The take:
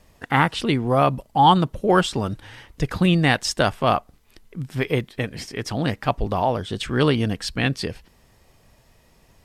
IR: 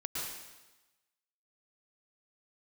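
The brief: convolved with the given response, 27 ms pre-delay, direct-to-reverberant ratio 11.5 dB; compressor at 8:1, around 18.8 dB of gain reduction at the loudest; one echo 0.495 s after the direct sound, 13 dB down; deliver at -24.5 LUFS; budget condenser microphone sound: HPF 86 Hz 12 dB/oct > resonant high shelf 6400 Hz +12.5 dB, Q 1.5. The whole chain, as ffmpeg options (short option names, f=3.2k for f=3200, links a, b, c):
-filter_complex "[0:a]acompressor=threshold=-31dB:ratio=8,aecho=1:1:495:0.224,asplit=2[a][b];[1:a]atrim=start_sample=2205,adelay=27[c];[b][c]afir=irnorm=-1:irlink=0,volume=-14.5dB[d];[a][d]amix=inputs=2:normalize=0,highpass=86,highshelf=f=6.4k:t=q:w=1.5:g=12.5,volume=10.5dB"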